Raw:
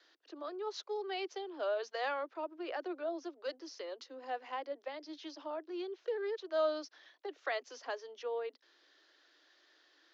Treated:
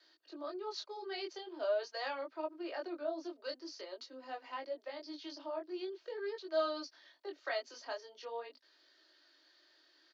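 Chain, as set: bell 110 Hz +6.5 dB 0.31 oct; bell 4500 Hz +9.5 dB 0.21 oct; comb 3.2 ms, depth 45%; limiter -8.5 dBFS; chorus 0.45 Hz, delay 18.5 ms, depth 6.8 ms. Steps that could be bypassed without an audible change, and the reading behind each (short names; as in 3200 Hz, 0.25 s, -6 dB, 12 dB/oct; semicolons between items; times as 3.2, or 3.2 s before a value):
bell 110 Hz: input band starts at 240 Hz; limiter -8.5 dBFS: input peak -20.0 dBFS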